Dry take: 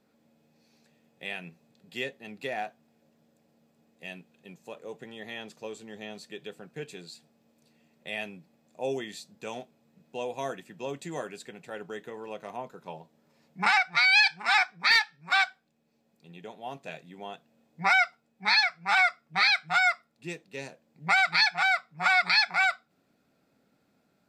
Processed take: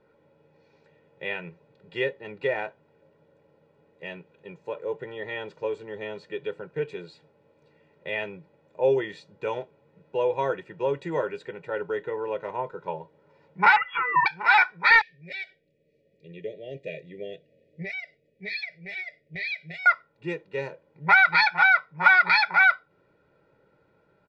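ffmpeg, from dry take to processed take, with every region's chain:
-filter_complex "[0:a]asettb=1/sr,asplit=3[a][b][c];[a]atrim=end=13.764[d];[b]atrim=start=13.76:end=14.26,asetpts=PTS-STARTPTS,afade=t=in:d=0.004:c=qsin,afade=t=out:st=0.496:d=0.004:c=qsin,aecho=1:1:6:0.85,atrim=end_sample=22050,acompressor=threshold=-36dB:ratio=2:attack=3.2:release=140:knee=1:detection=peak,lowpass=f=3k:t=q:w=0.5098,lowpass=f=3k:t=q:w=0.6013,lowpass=f=3k:t=q:w=0.9,lowpass=f=3k:t=q:w=2.563,afreqshift=-3500[e];[c]atrim=start=14.256[f];[d][e]acrossfade=d=0.004:c1=hsin:c2=qsin[g];[g][f]acrossfade=d=0.004:c1=qsin:c2=hsin,asettb=1/sr,asplit=3[h][i][j];[h]atrim=end=15.014[k];[i]atrim=start=15.01:end=19.86,asetpts=PTS-STARTPTS,afade=t=in:d=0.004:c=qsin,afade=t=out:st=4.846:d=0.004:c=qsin,acompressor=threshold=-33dB:ratio=3:attack=3.2:release=140:knee=1:detection=peak,asuperstop=centerf=1100:order=12:qfactor=0.93[l];[j]atrim=start=19.856[m];[k][l]acrossfade=d=0.004:c1=hsin:c2=qsin[n];[n][m]acrossfade=d=0.004:c1=qsin:c2=hsin,lowpass=2k,aecho=1:1:2.1:0.81,volume=6dB"

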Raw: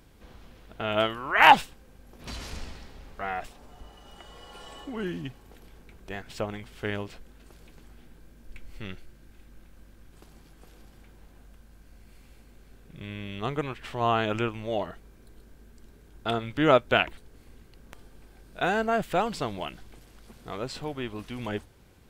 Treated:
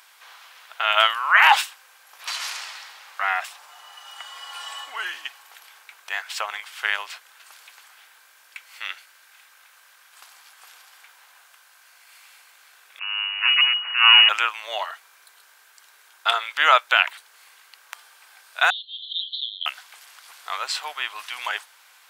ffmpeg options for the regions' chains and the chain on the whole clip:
-filter_complex "[0:a]asettb=1/sr,asplit=3[a][b][c];[a]atrim=end=12.994[d];[b]atrim=start=12.99:end=14.29,asetpts=PTS-STARTPTS,afade=t=in:d=0.004:c=qsin,afade=t=out:st=1.296:d=0.004:c=qsin,bandreject=f=50:t=h:w=6,bandreject=f=100:t=h:w=6,bandreject=f=150:t=h:w=6,bandreject=f=200:t=h:w=6,aeval=exprs='abs(val(0))':c=same,lowpass=f=2.5k:t=q:w=0.5098,lowpass=f=2.5k:t=q:w=0.6013,lowpass=f=2.5k:t=q:w=0.9,lowpass=f=2.5k:t=q:w=2.563,afreqshift=-2900[e];[c]atrim=start=14.286[f];[d][e]acrossfade=d=0.004:c1=hsin:c2=qsin[g];[g][f]acrossfade=d=0.004:c1=qsin:c2=hsin,asettb=1/sr,asplit=3[h][i][j];[h]atrim=end=18.704[k];[i]atrim=start=18.7:end=19.66,asetpts=PTS-STARTPTS,afade=t=in:d=0.004:c=qsin,afade=t=out:st=0.956:d=0.004:c=qsin,asuperpass=centerf=3600:order=12:qfactor=3.6,acontrast=50[l];[j]atrim=start=19.656[m];[k][l]acrossfade=d=0.004:c1=hsin:c2=qsin[n];[n][m]acrossfade=d=0.004:c1=qsin:c2=hsin,highpass=f=970:w=0.5412,highpass=f=970:w=1.3066,alimiter=level_in=14dB:limit=-1dB:release=50:level=0:latency=1,volume=-1dB"

